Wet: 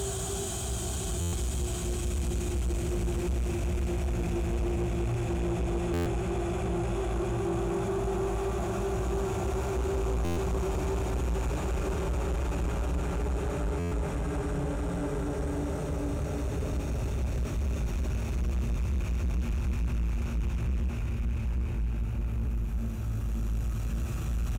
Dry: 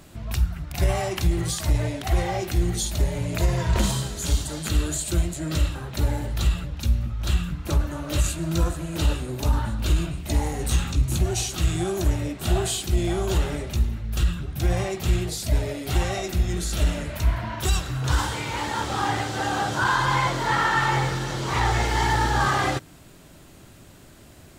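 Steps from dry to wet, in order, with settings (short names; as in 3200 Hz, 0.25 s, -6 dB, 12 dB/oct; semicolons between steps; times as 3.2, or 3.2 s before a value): rattling part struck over -22 dBFS, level -17 dBFS; Paulstretch 18×, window 0.50 s, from 12.74; in parallel at +2 dB: limiter -21 dBFS, peak gain reduction 11 dB; on the sum: high shelf 8200 Hz -10 dB; on a send: echo 0.3 s -11 dB; on the sum: soft clip -19.5 dBFS, distortion -11 dB; band shelf 3000 Hz -10 dB; stuck buffer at 1.2/5.93/10.24/13.79, samples 512, times 10; gain -6 dB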